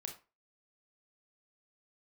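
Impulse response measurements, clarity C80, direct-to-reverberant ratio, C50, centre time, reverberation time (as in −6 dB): 16.0 dB, 3.0 dB, 9.5 dB, 16 ms, 0.30 s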